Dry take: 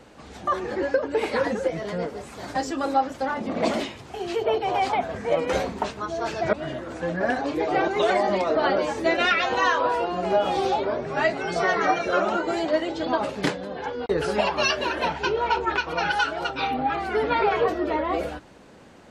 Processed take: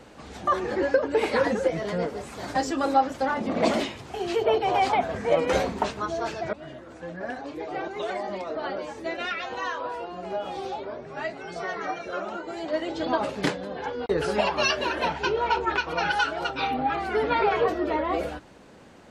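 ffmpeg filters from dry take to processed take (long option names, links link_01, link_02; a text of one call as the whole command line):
ffmpeg -i in.wav -af "volume=9.5dB,afade=type=out:start_time=6.06:duration=0.5:silence=0.298538,afade=type=in:start_time=12.55:duration=0.45:silence=0.375837" out.wav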